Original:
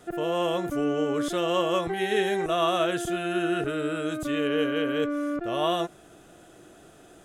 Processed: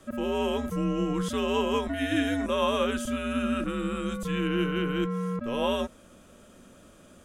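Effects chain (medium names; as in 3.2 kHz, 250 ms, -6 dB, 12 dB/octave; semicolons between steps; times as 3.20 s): frequency shift -110 Hz; trim -1.5 dB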